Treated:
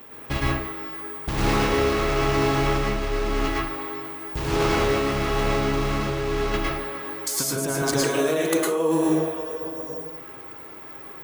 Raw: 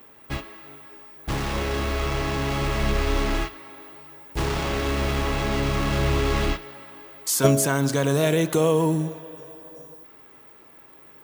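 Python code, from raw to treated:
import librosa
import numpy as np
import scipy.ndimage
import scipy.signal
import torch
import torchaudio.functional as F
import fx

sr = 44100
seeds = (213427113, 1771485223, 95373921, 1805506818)

y = fx.highpass(x, sr, hz=320.0, slope=12, at=(7.82, 9.5))
y = fx.over_compress(y, sr, threshold_db=-28.0, ratio=-1.0)
y = fx.rev_plate(y, sr, seeds[0], rt60_s=0.55, hf_ratio=0.5, predelay_ms=95, drr_db=-4.0)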